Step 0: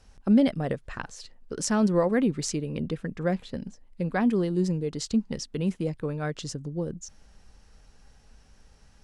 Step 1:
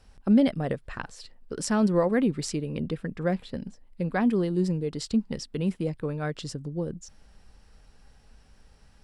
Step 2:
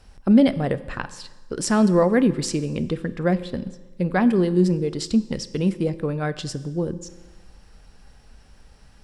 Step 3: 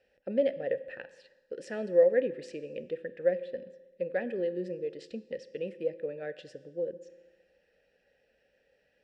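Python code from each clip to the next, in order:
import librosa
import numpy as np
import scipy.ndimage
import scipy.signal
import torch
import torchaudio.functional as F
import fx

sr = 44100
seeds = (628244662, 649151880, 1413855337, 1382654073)

y1 = fx.peak_eq(x, sr, hz=6400.0, db=-8.0, octaves=0.25)
y2 = fx.rev_fdn(y1, sr, rt60_s=1.2, lf_ratio=1.0, hf_ratio=0.9, size_ms=17.0, drr_db=13.0)
y2 = y2 * 10.0 ** (5.5 / 20.0)
y3 = fx.vowel_filter(y2, sr, vowel='e')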